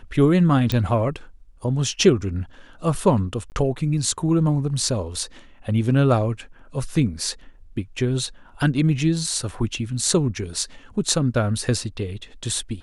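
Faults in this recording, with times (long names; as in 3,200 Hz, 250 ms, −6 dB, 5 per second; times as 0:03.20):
0:00.72: click −9 dBFS
0:03.50–0:03.52: drop-out 19 ms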